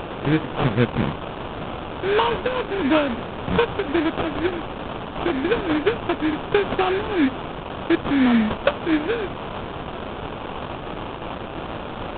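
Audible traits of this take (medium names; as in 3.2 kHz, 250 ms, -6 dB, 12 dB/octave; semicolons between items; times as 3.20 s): a quantiser's noise floor 6-bit, dither triangular; phasing stages 2, 2.8 Hz, lowest notch 690–2800 Hz; aliases and images of a low sample rate 2 kHz, jitter 20%; A-law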